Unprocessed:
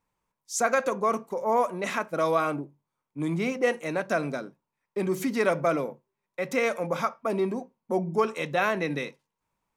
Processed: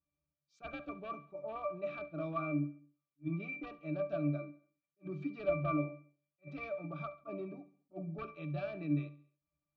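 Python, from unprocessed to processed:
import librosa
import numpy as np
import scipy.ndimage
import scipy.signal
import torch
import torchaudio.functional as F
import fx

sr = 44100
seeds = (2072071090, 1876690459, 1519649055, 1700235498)

p1 = np.minimum(x, 2.0 * 10.0 ** (-18.5 / 20.0) - x)
p2 = fx.lowpass_res(p1, sr, hz=4000.0, q=2.8)
p3 = fx.octave_resonator(p2, sr, note='D', decay_s=0.24)
p4 = p3 + fx.echo_feedback(p3, sr, ms=69, feedback_pct=54, wet_db=-21, dry=0)
p5 = fx.attack_slew(p4, sr, db_per_s=460.0)
y = p5 * librosa.db_to_amplitude(3.5)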